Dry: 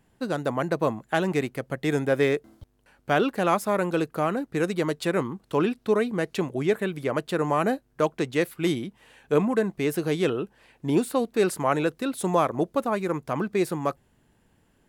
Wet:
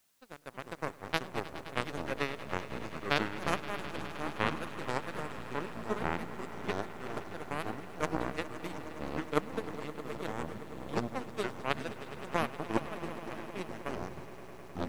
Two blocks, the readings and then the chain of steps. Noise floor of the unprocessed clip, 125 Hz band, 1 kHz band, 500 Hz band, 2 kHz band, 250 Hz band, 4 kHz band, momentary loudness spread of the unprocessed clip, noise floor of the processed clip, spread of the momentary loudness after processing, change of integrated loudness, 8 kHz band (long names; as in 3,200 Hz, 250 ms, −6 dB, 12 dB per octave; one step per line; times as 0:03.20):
−66 dBFS, −11.0 dB, −8.5 dB, −13.5 dB, −6.0 dB, −13.0 dB, −4.5 dB, 6 LU, −49 dBFS, 8 LU, −11.0 dB, −11.0 dB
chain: power curve on the samples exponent 3
bit-depth reduction 12 bits, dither triangular
delay with pitch and tempo change per echo 249 ms, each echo −5 semitones, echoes 3
echo that builds up and dies away 104 ms, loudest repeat 5, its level −17 dB